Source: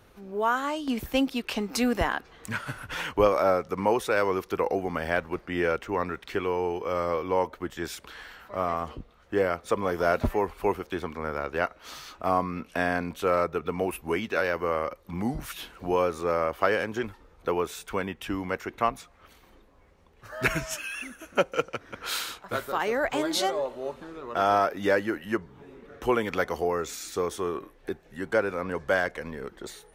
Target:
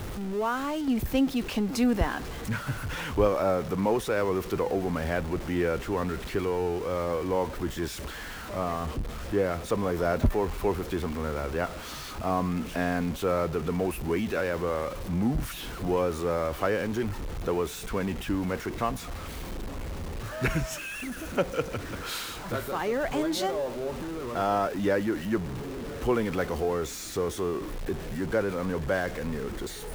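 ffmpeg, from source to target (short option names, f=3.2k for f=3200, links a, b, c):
-af "aeval=exprs='val(0)+0.5*0.0316*sgn(val(0))':c=same,lowshelf=f=360:g=11,volume=-7dB"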